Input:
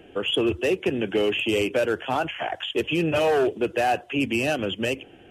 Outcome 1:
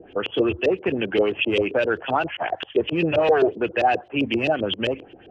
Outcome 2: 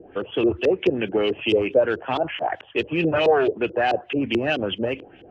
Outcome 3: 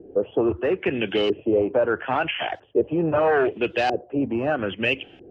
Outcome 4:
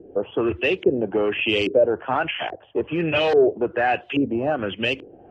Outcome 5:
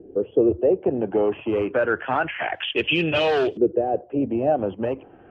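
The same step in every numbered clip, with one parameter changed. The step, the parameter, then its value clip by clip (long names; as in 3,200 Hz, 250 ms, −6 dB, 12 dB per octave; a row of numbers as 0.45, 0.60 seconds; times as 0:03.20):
auto-filter low-pass, speed: 7.6, 4.6, 0.77, 1.2, 0.28 Hertz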